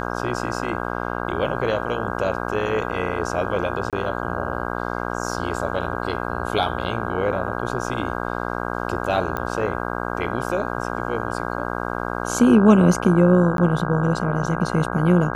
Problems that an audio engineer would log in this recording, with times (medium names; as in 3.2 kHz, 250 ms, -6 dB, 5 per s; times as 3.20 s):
buzz 60 Hz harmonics 27 -27 dBFS
3.90–3.93 s: dropout 27 ms
9.37 s: pop -13 dBFS
13.57–13.58 s: dropout 12 ms